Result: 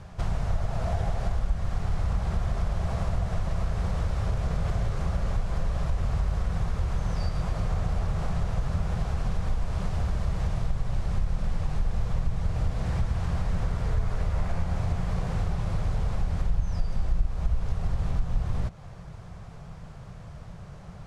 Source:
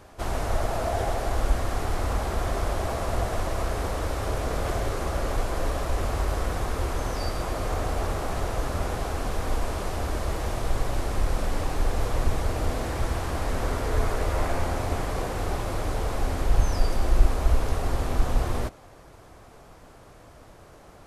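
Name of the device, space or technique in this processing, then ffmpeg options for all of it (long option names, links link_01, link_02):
jukebox: -af "lowpass=7100,lowshelf=frequency=220:width_type=q:width=3:gain=8.5,acompressor=threshold=-25dB:ratio=3"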